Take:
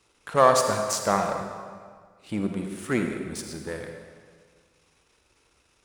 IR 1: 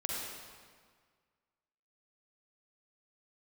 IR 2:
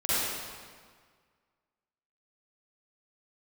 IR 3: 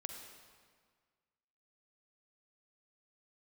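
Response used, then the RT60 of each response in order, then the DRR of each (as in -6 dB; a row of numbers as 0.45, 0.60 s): 3; 1.7, 1.7, 1.7 s; -3.5, -13.0, 4.0 dB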